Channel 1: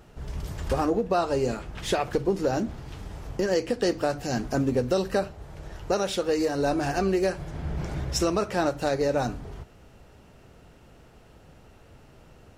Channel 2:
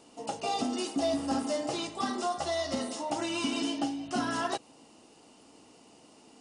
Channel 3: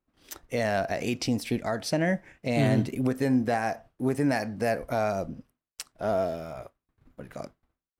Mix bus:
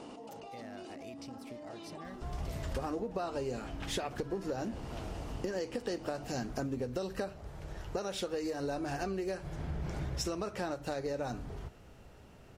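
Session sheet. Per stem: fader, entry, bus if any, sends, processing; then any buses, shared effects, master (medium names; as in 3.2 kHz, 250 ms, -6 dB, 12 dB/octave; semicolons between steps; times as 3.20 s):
-3.5 dB, 2.05 s, no send, none
-11.5 dB, 0.00 s, no send, low-pass 1.7 kHz 6 dB/octave; peak limiter -32 dBFS, peak gain reduction 11 dB; level flattener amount 100%
-18.5 dB, 0.00 s, no send, compression, threshold -27 dBFS, peak gain reduction 8.5 dB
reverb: none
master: compression, threshold -33 dBFS, peak gain reduction 10 dB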